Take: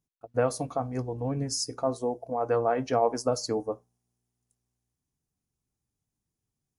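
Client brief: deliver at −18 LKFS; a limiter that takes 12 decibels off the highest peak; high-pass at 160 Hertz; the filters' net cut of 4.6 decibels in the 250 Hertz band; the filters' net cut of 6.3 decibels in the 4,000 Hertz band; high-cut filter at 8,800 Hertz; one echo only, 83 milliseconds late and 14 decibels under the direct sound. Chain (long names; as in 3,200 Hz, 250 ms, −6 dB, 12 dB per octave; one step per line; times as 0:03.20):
high-pass filter 160 Hz
low-pass filter 8,800 Hz
parametric band 250 Hz −4.5 dB
parametric band 4,000 Hz −9 dB
brickwall limiter −24.5 dBFS
single-tap delay 83 ms −14 dB
level +18 dB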